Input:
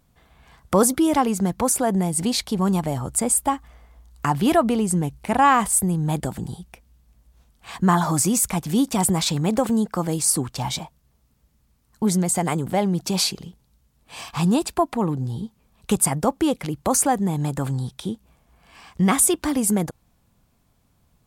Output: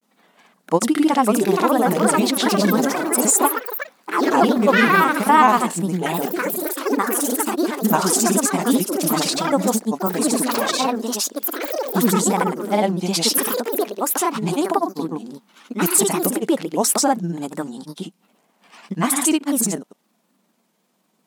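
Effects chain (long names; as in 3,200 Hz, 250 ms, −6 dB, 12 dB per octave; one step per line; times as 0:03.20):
granular cloud, pitch spread up and down by 3 semitones
linear-phase brick-wall high-pass 170 Hz
delay with pitch and tempo change per echo 698 ms, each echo +4 semitones, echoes 3
level +3.5 dB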